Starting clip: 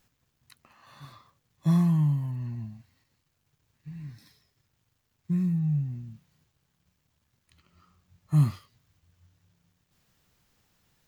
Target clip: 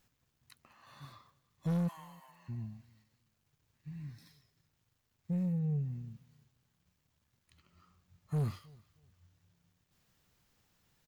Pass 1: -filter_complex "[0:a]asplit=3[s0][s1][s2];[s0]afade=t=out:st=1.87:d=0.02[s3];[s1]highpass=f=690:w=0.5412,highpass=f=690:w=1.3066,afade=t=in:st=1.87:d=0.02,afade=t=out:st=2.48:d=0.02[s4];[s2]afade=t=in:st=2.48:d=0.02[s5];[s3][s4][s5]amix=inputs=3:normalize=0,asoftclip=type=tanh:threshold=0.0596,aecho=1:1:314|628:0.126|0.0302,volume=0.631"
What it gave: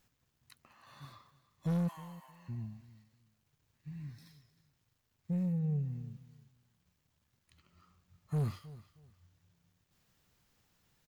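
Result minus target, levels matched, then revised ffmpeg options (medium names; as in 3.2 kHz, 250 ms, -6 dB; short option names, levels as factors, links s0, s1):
echo-to-direct +7.5 dB
-filter_complex "[0:a]asplit=3[s0][s1][s2];[s0]afade=t=out:st=1.87:d=0.02[s3];[s1]highpass=f=690:w=0.5412,highpass=f=690:w=1.3066,afade=t=in:st=1.87:d=0.02,afade=t=out:st=2.48:d=0.02[s4];[s2]afade=t=in:st=2.48:d=0.02[s5];[s3][s4][s5]amix=inputs=3:normalize=0,asoftclip=type=tanh:threshold=0.0596,aecho=1:1:314|628:0.0531|0.0127,volume=0.631"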